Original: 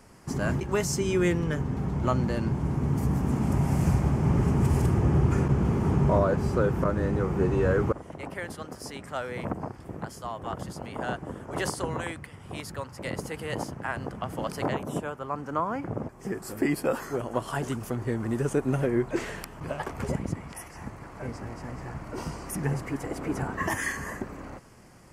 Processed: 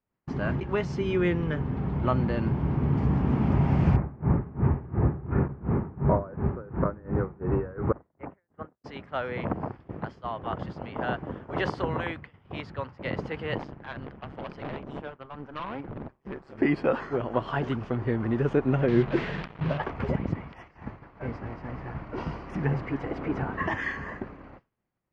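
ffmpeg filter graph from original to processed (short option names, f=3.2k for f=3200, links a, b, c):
-filter_complex "[0:a]asettb=1/sr,asplit=3[a][b][c];[a]atrim=end=3.964[d];[b]atrim=start=3.96:end=8.84,asetpts=PTS-STARTPTS,afade=t=in:d=0.004:c=qsin,afade=t=out:st=4.876:d=0.004:c=qsin,lowpass=f=1.9k:w=0.5412,lowpass=f=1.9k:w=1.3066,aeval=exprs='val(0)*pow(10,-20*(0.5-0.5*cos(2*PI*2.8*n/s))/20)':c=same[e];[c]atrim=start=8.836[f];[d][e]acrossfade=d=0.004:c1=hsin:c2=qsin[g];[g][f]acrossfade=d=0.004:c1=qsin:c2=hsin,asettb=1/sr,asplit=3[h][i][j];[h]atrim=end=13.584[k];[i]atrim=start=13.58:end=16.58,asetpts=PTS-STARTPTS,afade=t=in:d=0.004:c=qsin,afade=t=out:st=2.996:d=0.004:c=qsin,asoftclip=type=hard:threshold=-30.5dB,tremolo=f=140:d=0.75[l];[j]atrim=start=16.576[m];[k][l]acrossfade=d=0.004:c1=hsin:c2=qsin[n];[n][m]acrossfade=d=0.004:c1=qsin:c2=hsin,asettb=1/sr,asplit=3[o][p][q];[o]atrim=end=18.884[r];[p]atrim=start=18.88:end=19.78,asetpts=PTS-STARTPTS,afade=t=in:d=0.004:c=qsin,afade=t=out:st=0.896:d=0.004:c=qsin,equalizer=f=160:t=o:w=0.59:g=11.5,acrusher=bits=5:mix=0:aa=0.5[s];[q]atrim=start=19.776[t];[r][s]acrossfade=d=0.004:c1=hsin:c2=qsin[u];[u][t]acrossfade=d=0.004:c1=qsin:c2=hsin,agate=range=-33dB:threshold=-35dB:ratio=3:detection=peak,lowpass=f=3.6k:w=0.5412,lowpass=f=3.6k:w=1.3066,dynaudnorm=f=410:g=11:m=3dB,volume=-1dB"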